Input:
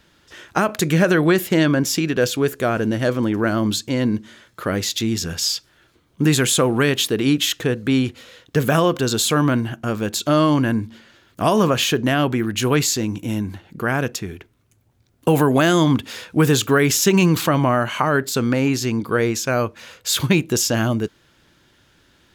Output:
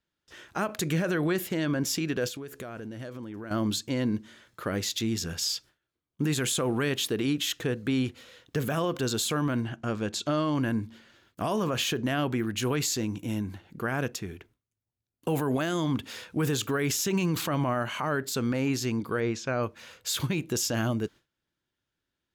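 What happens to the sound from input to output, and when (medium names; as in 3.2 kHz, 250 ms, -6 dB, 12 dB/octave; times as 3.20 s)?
2.28–3.51 s: compression 16:1, threshold -27 dBFS
9.62–10.55 s: low-pass 7.6 kHz
19.20–19.63 s: distance through air 110 m
whole clip: gate with hold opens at -43 dBFS; peak limiter -11.5 dBFS; trim -7.5 dB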